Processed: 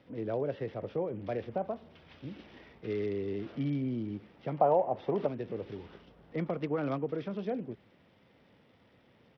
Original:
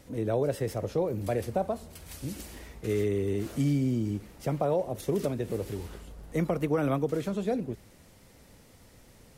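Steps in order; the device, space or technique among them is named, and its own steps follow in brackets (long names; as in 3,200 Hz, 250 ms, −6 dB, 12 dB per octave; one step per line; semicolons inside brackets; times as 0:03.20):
0:04.58–0:05.27: parametric band 810 Hz +13.5 dB 0.97 octaves
Bluetooth headset (high-pass filter 130 Hz 12 dB per octave; downsampling to 8,000 Hz; level −5 dB; SBC 64 kbit/s 44,100 Hz)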